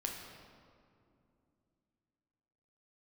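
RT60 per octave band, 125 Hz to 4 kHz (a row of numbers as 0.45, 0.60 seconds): 3.4, 3.6, 2.8, 2.3, 1.7, 1.3 seconds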